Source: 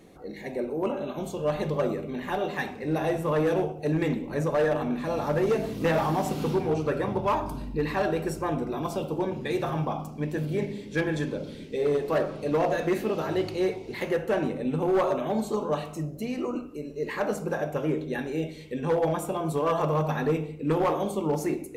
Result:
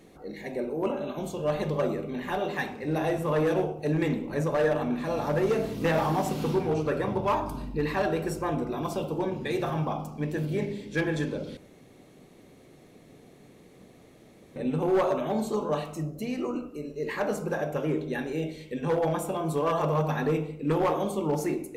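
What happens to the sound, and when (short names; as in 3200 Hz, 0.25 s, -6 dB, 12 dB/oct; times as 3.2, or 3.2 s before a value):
11.57–14.56 room tone
whole clip: de-hum 45.24 Hz, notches 33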